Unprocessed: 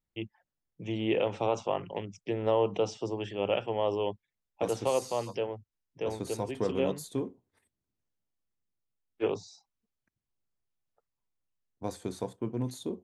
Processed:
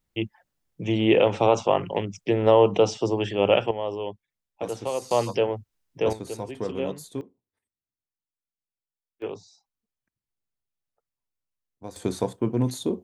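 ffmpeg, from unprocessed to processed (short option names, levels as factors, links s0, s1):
-af "asetnsamples=n=441:p=0,asendcmd='3.71 volume volume -0.5dB;5.11 volume volume 9.5dB;6.13 volume volume 0dB;7.21 volume volume -13dB;9.22 volume volume -3.5dB;11.96 volume volume 9dB',volume=2.99"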